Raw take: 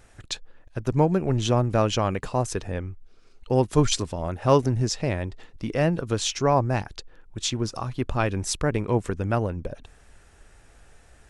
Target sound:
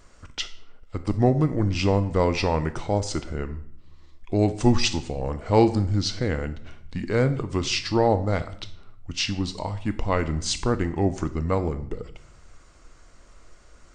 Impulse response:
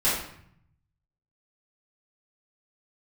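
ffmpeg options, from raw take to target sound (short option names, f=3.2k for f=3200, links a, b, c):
-filter_complex "[0:a]asetrate=35721,aresample=44100,asplit=2[a][b];[1:a]atrim=start_sample=2205,highshelf=f=5.2k:g=9.5[c];[b][c]afir=irnorm=-1:irlink=0,volume=-24dB[d];[a][d]amix=inputs=2:normalize=0"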